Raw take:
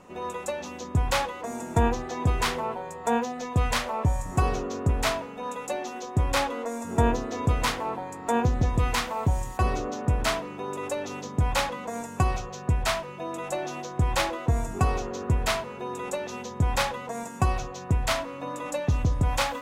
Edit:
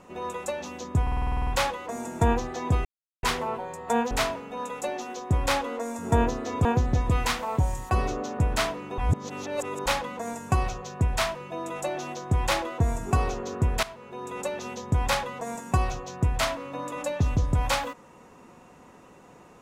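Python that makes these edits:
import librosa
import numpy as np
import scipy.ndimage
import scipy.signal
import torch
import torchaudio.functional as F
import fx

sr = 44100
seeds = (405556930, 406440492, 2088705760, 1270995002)

y = fx.edit(x, sr, fx.stutter(start_s=1.02, slice_s=0.05, count=10),
    fx.insert_silence(at_s=2.4, length_s=0.38),
    fx.cut(start_s=3.28, length_s=1.69),
    fx.cut(start_s=7.51, length_s=0.82),
    fx.reverse_span(start_s=10.66, length_s=0.88),
    fx.fade_in_from(start_s=15.51, length_s=0.63, floor_db=-15.0), tone=tone)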